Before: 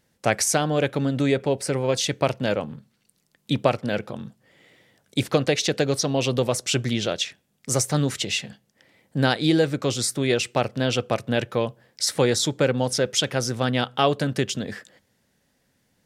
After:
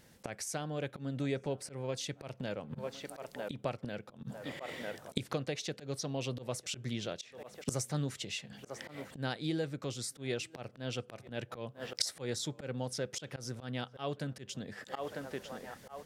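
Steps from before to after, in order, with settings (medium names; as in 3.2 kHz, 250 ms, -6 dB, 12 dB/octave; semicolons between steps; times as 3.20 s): band-passed feedback delay 948 ms, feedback 42%, band-pass 870 Hz, level -24 dB; level rider gain up to 5.5 dB; dynamic bell 140 Hz, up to +3 dB, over -35 dBFS, Q 1.4; inverted gate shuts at -19 dBFS, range -25 dB; slow attack 116 ms; trim +6.5 dB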